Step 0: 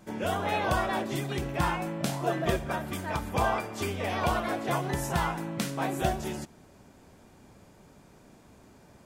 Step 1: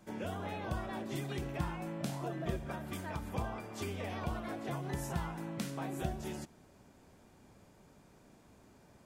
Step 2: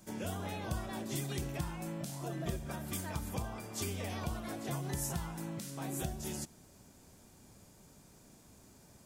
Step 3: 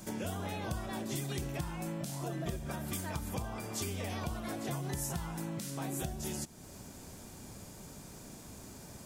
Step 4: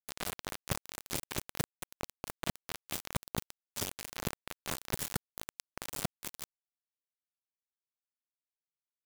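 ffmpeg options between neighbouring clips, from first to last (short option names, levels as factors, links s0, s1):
-filter_complex "[0:a]acrossover=split=340[s0][s1];[s1]acompressor=threshold=0.02:ratio=10[s2];[s0][s2]amix=inputs=2:normalize=0,volume=0.501"
-af "bass=f=250:g=4,treble=f=4000:g=13,alimiter=limit=0.0708:level=0:latency=1:release=289,volume=0.841"
-af "acompressor=threshold=0.00251:ratio=2,volume=3.16"
-af "acrusher=bits=4:mix=0:aa=0.000001,volume=1.26"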